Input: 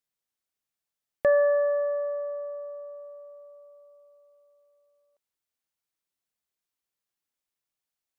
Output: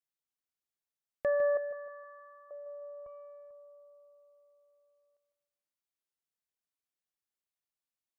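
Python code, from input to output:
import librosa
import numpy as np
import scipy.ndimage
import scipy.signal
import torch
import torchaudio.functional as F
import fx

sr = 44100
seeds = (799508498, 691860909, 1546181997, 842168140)

y = fx.highpass(x, sr, hz=1100.0, slope=24, at=(1.57, 2.51))
y = fx.echo_feedback(y, sr, ms=154, feedback_pct=42, wet_db=-10.5)
y = fx.doppler_dist(y, sr, depth_ms=0.42, at=(3.06, 3.51))
y = y * 10.0 ** (-8.5 / 20.0)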